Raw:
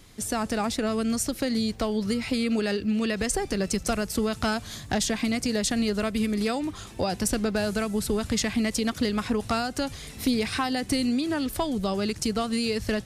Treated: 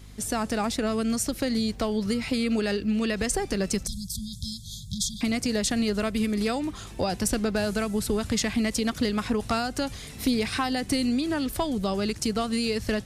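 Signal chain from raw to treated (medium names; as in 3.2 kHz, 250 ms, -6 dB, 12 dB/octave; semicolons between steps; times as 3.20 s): hum 50 Hz, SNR 20 dB; 3.87–5.21 s: brick-wall FIR band-stop 210–3200 Hz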